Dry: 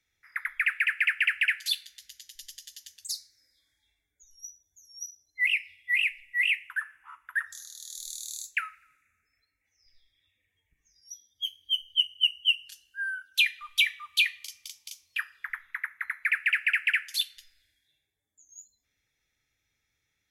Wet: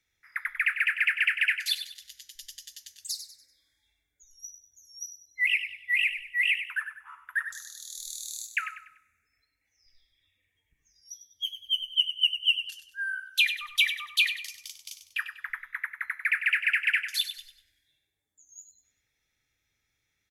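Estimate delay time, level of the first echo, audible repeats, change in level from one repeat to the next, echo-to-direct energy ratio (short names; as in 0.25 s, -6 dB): 97 ms, -10.0 dB, 3, -8.5 dB, -9.5 dB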